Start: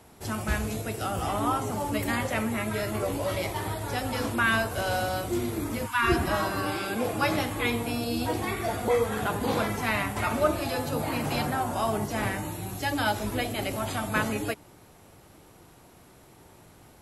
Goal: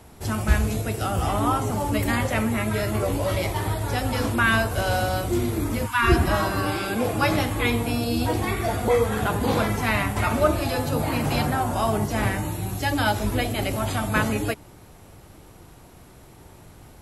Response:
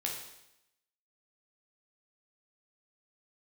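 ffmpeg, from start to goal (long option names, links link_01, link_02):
-af "lowshelf=frequency=94:gain=10.5,volume=3.5dB"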